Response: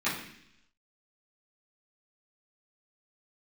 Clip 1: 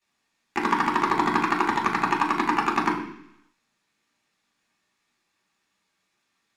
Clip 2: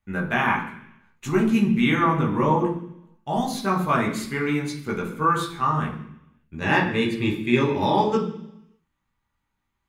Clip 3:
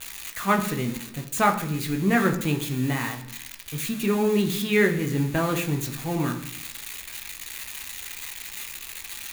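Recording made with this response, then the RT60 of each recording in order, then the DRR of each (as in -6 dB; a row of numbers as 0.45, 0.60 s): 1; 0.70, 0.70, 0.70 s; -12.5, -3.0, 3.5 dB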